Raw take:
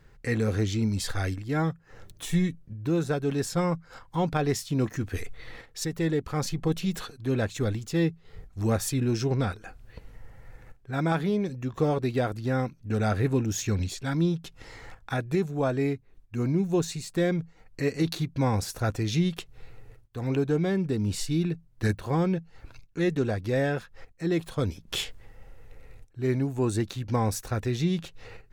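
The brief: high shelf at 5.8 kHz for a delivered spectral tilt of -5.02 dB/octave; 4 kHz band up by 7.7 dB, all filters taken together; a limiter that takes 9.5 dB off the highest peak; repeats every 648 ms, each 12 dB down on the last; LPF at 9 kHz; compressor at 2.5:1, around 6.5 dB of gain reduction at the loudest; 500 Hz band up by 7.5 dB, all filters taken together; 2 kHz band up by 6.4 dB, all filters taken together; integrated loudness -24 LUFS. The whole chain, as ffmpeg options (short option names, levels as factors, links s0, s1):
-af "lowpass=9000,equalizer=f=500:t=o:g=9,equalizer=f=2000:t=o:g=5.5,equalizer=f=4000:t=o:g=5.5,highshelf=f=5800:g=6.5,acompressor=threshold=0.0708:ratio=2.5,alimiter=limit=0.112:level=0:latency=1,aecho=1:1:648|1296|1944:0.251|0.0628|0.0157,volume=1.88"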